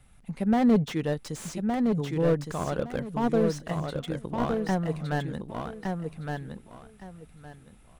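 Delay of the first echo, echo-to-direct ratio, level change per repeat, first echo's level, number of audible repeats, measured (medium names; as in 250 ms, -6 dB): 1164 ms, -4.5 dB, -13.0 dB, -4.5 dB, 3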